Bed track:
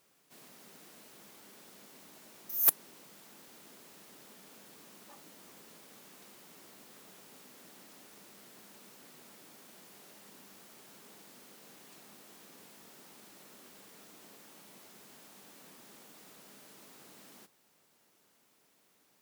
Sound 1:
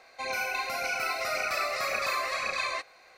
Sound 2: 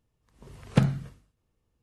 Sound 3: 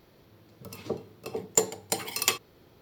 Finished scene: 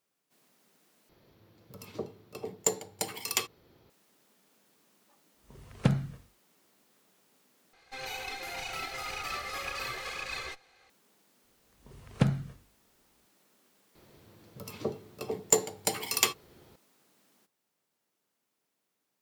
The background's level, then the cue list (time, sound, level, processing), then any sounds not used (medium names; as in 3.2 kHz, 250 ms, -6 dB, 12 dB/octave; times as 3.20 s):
bed track -12 dB
1.09 s: replace with 3 -4.5 dB
5.08 s: add 2 -4 dB + expander -60 dBFS
7.73 s: replace with 1 -5.5 dB + comb filter that takes the minimum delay 2.4 ms
11.44 s: add 2 -4 dB
13.95 s: add 3 -0.5 dB + doubling 14 ms -12.5 dB